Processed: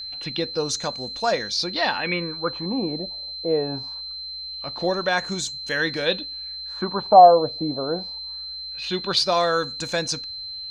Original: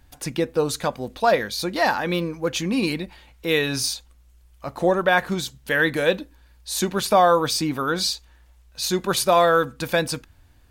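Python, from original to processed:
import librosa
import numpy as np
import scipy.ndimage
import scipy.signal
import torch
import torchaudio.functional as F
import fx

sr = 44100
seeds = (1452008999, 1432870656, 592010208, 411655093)

y = fx.filter_lfo_lowpass(x, sr, shape='sine', hz=0.23, low_hz=600.0, high_hz=7100.0, q=4.5)
y = y + 10.0 ** (-27.0 / 20.0) * np.sin(2.0 * np.pi * 4100.0 * np.arange(len(y)) / sr)
y = F.gain(torch.from_numpy(y), -4.5).numpy()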